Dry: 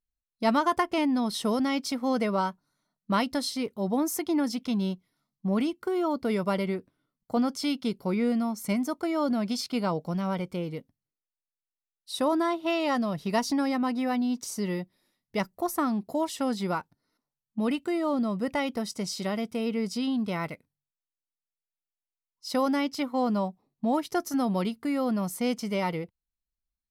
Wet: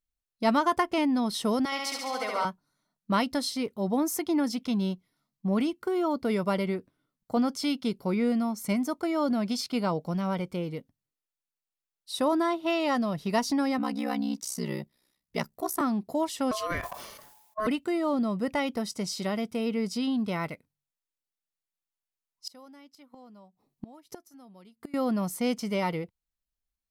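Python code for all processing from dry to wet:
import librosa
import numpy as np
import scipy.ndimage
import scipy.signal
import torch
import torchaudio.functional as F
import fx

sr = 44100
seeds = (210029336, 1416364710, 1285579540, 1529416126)

y = fx.chain(x, sr, fx.highpass(hz=730.0, slope=12),
    fx.room_flutter(wall_m=11.9, rt60_s=1.2), at=(1.65, 2.45))
y = fx.chain(y, sr, fx.high_shelf(hz=3900.0, db=5.5),
    fx.ring_mod(carrier_hz=32.0), at=(13.78, 15.81))
y = fx.chain(y, sr, fx.high_shelf(hz=8600.0, db=9.5),
    fx.ring_mod(carrier_hz=860.0),
    fx.sustainer(db_per_s=46.0), at=(16.51, 17.67))
y = fx.chain(y, sr, fx.high_shelf(hz=5200.0, db=5.5),
    fx.gate_flip(shuts_db=-24.0, range_db=-25), at=(22.47, 24.94))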